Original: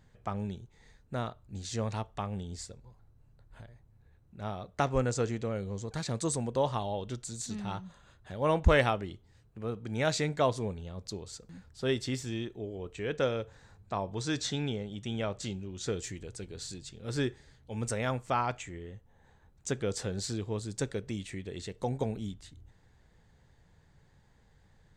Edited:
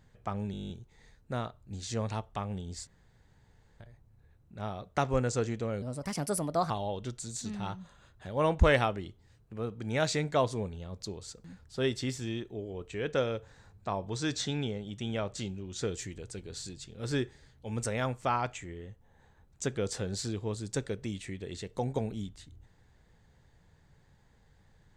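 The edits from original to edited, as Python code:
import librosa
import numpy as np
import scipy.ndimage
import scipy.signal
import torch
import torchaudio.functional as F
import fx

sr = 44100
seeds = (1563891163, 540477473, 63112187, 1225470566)

y = fx.edit(x, sr, fx.stutter(start_s=0.52, slice_s=0.02, count=10),
    fx.room_tone_fill(start_s=2.69, length_s=0.93),
    fx.speed_span(start_s=5.64, length_s=1.11, speed=1.26), tone=tone)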